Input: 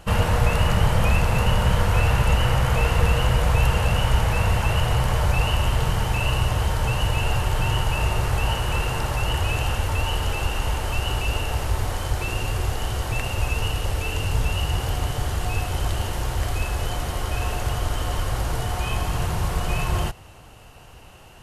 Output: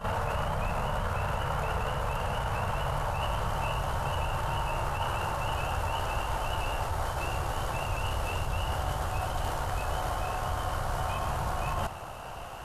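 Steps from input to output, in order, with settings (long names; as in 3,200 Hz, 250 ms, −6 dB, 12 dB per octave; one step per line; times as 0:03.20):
echo ahead of the sound 54 ms −13 dB
brickwall limiter −13.5 dBFS, peak gain reduction 7.5 dB
flat-topped bell 920 Hz +8.5 dB
reversed playback
downward compressor 6 to 1, threshold −30 dBFS, peak gain reduction 14 dB
reversed playback
time stretch by overlap-add 0.59×, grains 29 ms
level +3 dB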